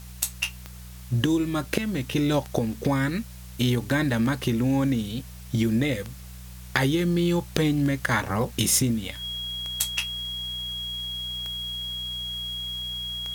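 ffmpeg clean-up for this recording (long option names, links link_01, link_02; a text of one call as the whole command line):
ffmpeg -i in.wav -af "adeclick=threshold=4,bandreject=frequency=61.3:width_type=h:width=4,bandreject=frequency=122.6:width_type=h:width=4,bandreject=frequency=183.9:width_type=h:width=4,bandreject=frequency=3300:width=30,afwtdn=0.0035" out.wav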